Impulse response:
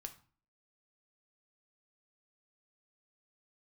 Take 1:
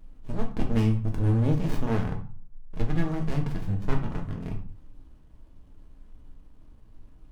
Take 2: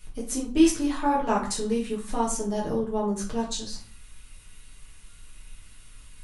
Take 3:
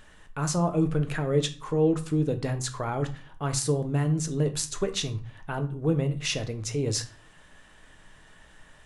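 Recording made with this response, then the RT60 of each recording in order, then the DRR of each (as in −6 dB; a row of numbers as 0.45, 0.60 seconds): 3; 0.40, 0.40, 0.40 seconds; 1.0, −5.0, 6.5 decibels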